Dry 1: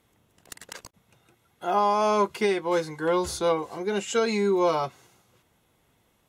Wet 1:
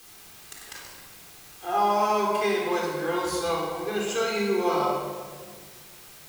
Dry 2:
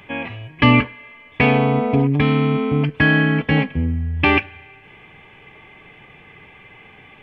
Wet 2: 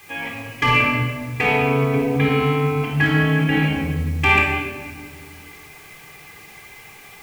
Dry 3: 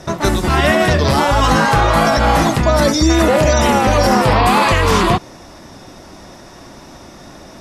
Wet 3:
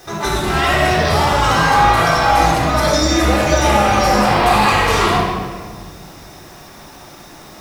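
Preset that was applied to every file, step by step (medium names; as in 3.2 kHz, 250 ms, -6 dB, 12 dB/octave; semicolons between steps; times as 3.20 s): bass shelf 430 Hz -10 dB; overload inside the chain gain 10 dB; word length cut 8-bit, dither triangular; simulated room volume 2100 m³, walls mixed, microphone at 3.8 m; trim -4.5 dB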